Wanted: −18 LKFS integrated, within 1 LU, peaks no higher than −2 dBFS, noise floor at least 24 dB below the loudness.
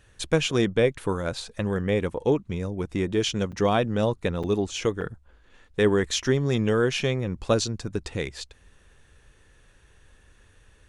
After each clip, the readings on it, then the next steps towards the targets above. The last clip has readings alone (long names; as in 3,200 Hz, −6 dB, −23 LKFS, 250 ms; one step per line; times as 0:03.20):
number of dropouts 3; longest dropout 6.2 ms; integrated loudness −25.5 LKFS; sample peak −8.0 dBFS; target loudness −18.0 LKFS
→ repair the gap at 0:03.52/0:04.43/0:05.01, 6.2 ms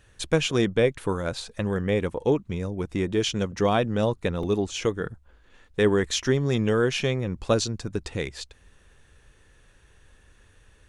number of dropouts 0; integrated loudness −26.0 LKFS; sample peak −8.0 dBFS; target loudness −18.0 LKFS
→ level +8 dB
brickwall limiter −2 dBFS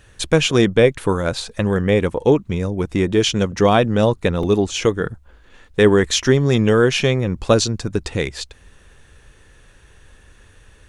integrated loudness −18.0 LKFS; sample peak −2.0 dBFS; background noise floor −50 dBFS